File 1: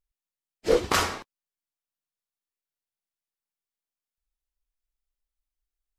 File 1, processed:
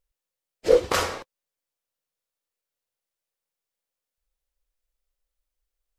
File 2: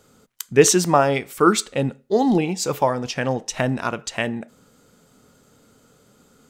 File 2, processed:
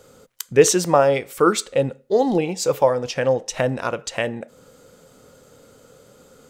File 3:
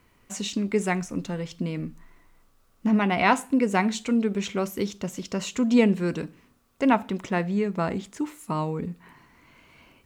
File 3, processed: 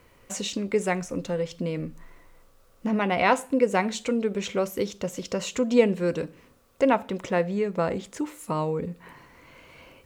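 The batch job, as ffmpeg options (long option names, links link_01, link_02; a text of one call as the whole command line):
ffmpeg -i in.wav -filter_complex "[0:a]equalizer=frequency=520:width_type=o:width=0.33:gain=10,asplit=2[link_01][link_02];[link_02]acompressor=threshold=-36dB:ratio=6,volume=1dB[link_03];[link_01][link_03]amix=inputs=2:normalize=0,equalizer=frequency=220:width_type=o:width=0.59:gain=-4,volume=-2.5dB" out.wav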